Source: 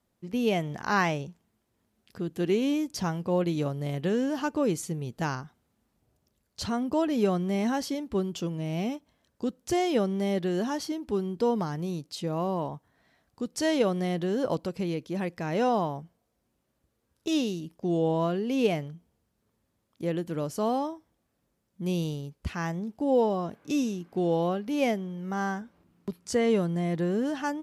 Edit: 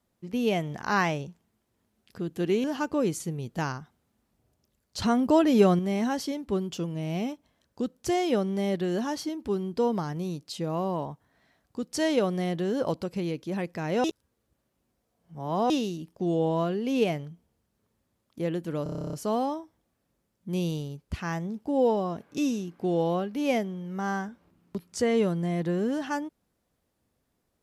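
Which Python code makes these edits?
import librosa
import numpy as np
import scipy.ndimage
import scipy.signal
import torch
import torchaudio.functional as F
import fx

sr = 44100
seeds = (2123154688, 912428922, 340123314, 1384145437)

y = fx.edit(x, sr, fx.cut(start_s=2.64, length_s=1.63),
    fx.clip_gain(start_s=6.65, length_s=0.77, db=5.5),
    fx.reverse_span(start_s=15.67, length_s=1.66),
    fx.stutter(start_s=20.46, slice_s=0.03, count=11), tone=tone)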